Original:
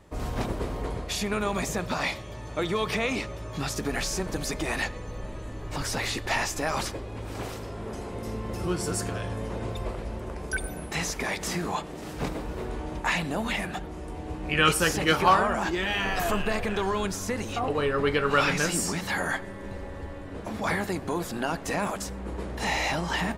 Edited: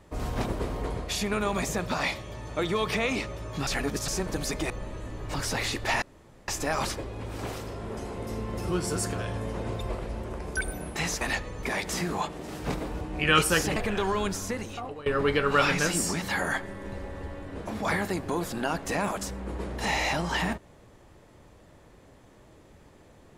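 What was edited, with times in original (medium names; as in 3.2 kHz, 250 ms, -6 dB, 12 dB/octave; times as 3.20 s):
3.67–4.08 s: reverse
4.70–5.12 s: move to 11.17 s
6.44 s: insert room tone 0.46 s
12.55–14.31 s: delete
15.06–16.55 s: delete
17.14–17.85 s: fade out linear, to -19 dB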